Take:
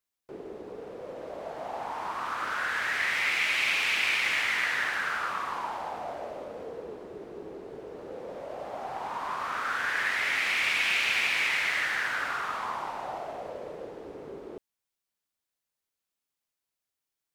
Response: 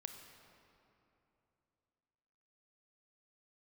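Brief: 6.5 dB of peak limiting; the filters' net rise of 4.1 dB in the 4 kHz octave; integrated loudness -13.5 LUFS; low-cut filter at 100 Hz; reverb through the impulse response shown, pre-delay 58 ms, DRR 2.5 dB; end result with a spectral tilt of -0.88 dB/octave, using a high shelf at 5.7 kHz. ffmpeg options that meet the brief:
-filter_complex "[0:a]highpass=100,equalizer=f=4000:t=o:g=7,highshelf=f=5700:g=-4,alimiter=limit=0.119:level=0:latency=1,asplit=2[s0][s1];[1:a]atrim=start_sample=2205,adelay=58[s2];[s1][s2]afir=irnorm=-1:irlink=0,volume=1.19[s3];[s0][s3]amix=inputs=2:normalize=0,volume=4.73"

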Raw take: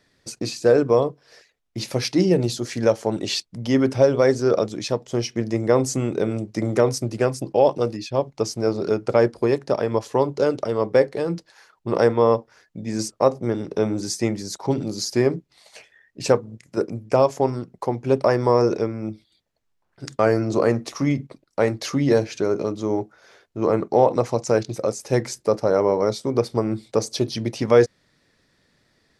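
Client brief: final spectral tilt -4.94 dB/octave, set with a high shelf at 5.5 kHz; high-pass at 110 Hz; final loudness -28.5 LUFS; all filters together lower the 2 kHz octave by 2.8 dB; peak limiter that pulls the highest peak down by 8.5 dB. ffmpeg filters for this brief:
-af "highpass=110,equalizer=f=2000:t=o:g=-4.5,highshelf=f=5500:g=6,volume=0.668,alimiter=limit=0.168:level=0:latency=1"

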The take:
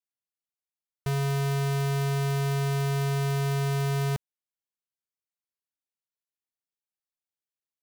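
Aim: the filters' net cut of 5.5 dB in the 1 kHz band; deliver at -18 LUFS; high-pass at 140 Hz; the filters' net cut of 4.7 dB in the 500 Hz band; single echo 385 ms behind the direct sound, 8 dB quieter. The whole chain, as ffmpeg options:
-af "highpass=140,equalizer=f=500:t=o:g=-5,equalizer=f=1000:t=o:g=-5.5,aecho=1:1:385:0.398,volume=5.96"

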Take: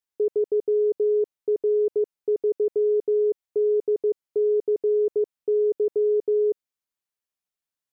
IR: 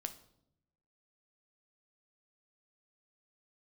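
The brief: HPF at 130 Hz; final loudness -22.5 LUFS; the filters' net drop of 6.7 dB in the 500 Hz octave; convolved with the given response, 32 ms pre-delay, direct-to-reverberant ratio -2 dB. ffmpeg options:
-filter_complex "[0:a]highpass=130,equalizer=f=500:t=o:g=-8.5,asplit=2[s0][s1];[1:a]atrim=start_sample=2205,adelay=32[s2];[s1][s2]afir=irnorm=-1:irlink=0,volume=1.58[s3];[s0][s3]amix=inputs=2:normalize=0,volume=2.11"

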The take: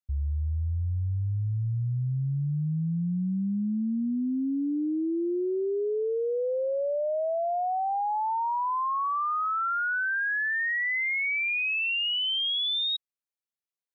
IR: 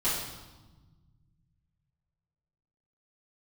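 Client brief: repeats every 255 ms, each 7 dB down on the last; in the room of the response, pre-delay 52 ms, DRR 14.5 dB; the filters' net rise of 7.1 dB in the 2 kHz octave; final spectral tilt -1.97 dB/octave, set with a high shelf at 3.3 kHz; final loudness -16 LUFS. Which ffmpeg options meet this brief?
-filter_complex "[0:a]equalizer=f=2000:t=o:g=6.5,highshelf=f=3300:g=7,aecho=1:1:255|510|765|1020|1275:0.447|0.201|0.0905|0.0407|0.0183,asplit=2[s0][s1];[1:a]atrim=start_sample=2205,adelay=52[s2];[s1][s2]afir=irnorm=-1:irlink=0,volume=0.0631[s3];[s0][s3]amix=inputs=2:normalize=0,volume=2.11"

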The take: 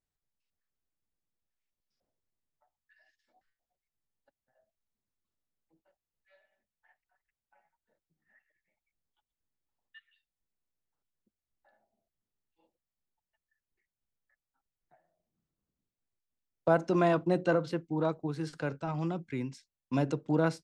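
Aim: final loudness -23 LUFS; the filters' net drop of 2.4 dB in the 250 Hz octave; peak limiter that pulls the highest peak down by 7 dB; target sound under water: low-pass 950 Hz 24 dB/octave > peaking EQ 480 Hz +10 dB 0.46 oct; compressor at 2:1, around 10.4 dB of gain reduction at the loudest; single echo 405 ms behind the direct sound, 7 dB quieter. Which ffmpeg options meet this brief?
-af "equalizer=f=250:t=o:g=-6,acompressor=threshold=0.00891:ratio=2,alimiter=level_in=2:limit=0.0631:level=0:latency=1,volume=0.501,lowpass=f=950:w=0.5412,lowpass=f=950:w=1.3066,equalizer=f=480:t=o:w=0.46:g=10,aecho=1:1:405:0.447,volume=5.96"

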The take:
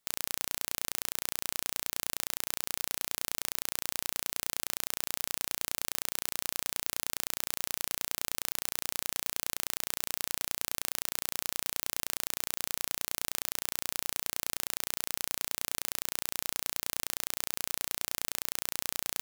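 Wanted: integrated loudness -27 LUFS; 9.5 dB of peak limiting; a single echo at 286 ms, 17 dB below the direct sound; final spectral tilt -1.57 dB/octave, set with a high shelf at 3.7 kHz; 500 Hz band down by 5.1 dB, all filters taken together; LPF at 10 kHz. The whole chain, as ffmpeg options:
-af "lowpass=10000,equalizer=f=500:t=o:g=-6.5,highshelf=f=3700:g=-5.5,alimiter=limit=0.0708:level=0:latency=1,aecho=1:1:286:0.141,volume=13.3"

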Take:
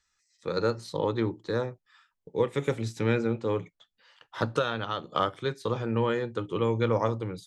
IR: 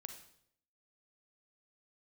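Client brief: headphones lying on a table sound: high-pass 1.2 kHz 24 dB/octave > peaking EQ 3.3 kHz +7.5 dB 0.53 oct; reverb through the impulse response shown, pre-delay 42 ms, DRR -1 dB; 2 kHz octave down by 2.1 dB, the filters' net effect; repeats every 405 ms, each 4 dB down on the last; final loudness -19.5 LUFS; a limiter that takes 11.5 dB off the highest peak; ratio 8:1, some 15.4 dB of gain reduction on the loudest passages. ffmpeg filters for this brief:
-filter_complex "[0:a]equalizer=f=2000:t=o:g=-3.5,acompressor=threshold=0.0141:ratio=8,alimiter=level_in=2.66:limit=0.0631:level=0:latency=1,volume=0.376,aecho=1:1:405|810|1215|1620|2025|2430|2835|3240|3645:0.631|0.398|0.25|0.158|0.0994|0.0626|0.0394|0.0249|0.0157,asplit=2[s0][s1];[1:a]atrim=start_sample=2205,adelay=42[s2];[s1][s2]afir=irnorm=-1:irlink=0,volume=1.88[s3];[s0][s3]amix=inputs=2:normalize=0,highpass=f=1200:w=0.5412,highpass=f=1200:w=1.3066,equalizer=f=3300:t=o:w=0.53:g=7.5,volume=21.1"

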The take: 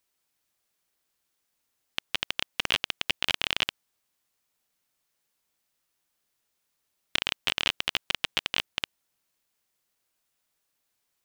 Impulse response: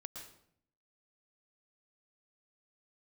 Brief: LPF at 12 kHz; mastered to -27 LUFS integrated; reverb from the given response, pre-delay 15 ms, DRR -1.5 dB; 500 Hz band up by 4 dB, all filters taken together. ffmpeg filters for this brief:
-filter_complex "[0:a]lowpass=12000,equalizer=f=500:t=o:g=5,asplit=2[s0][s1];[1:a]atrim=start_sample=2205,adelay=15[s2];[s1][s2]afir=irnorm=-1:irlink=0,volume=1.88[s3];[s0][s3]amix=inputs=2:normalize=0,volume=0.841"

